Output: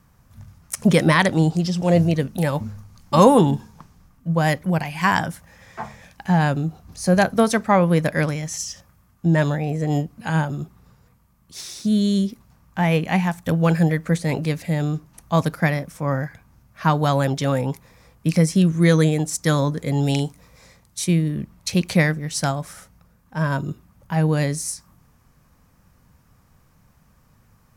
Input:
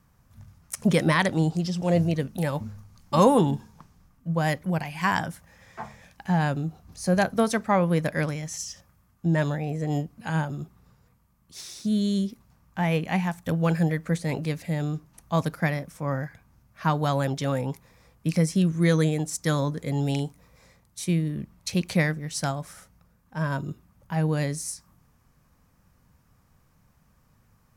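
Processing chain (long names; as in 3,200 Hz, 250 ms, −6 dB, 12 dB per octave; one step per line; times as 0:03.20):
0:20.03–0:21.07: parametric band 5,800 Hz +3.5 dB 2.3 octaves
level +5.5 dB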